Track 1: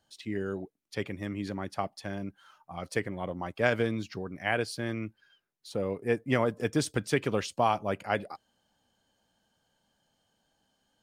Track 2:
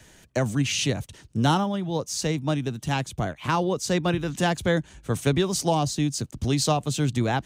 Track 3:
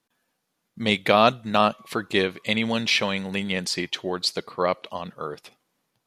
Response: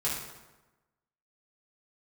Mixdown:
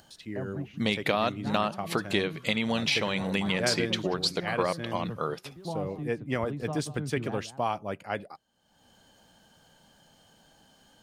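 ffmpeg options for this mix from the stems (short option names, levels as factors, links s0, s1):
-filter_complex "[0:a]acompressor=mode=upward:threshold=0.00891:ratio=2.5,volume=0.668,asplit=2[s0][s1];[1:a]lowpass=1400,volume=0.211,asplit=2[s2][s3];[s3]volume=0.224[s4];[2:a]volume=1.26[s5];[s1]apad=whole_len=328562[s6];[s2][s6]sidechaingate=range=0.0224:threshold=0.00178:ratio=16:detection=peak[s7];[s7][s5]amix=inputs=2:normalize=0,acompressor=threshold=0.0562:ratio=4,volume=1[s8];[s4]aecho=0:1:191:1[s9];[s0][s8][s9]amix=inputs=3:normalize=0,equalizer=f=160:t=o:w=0.23:g=4"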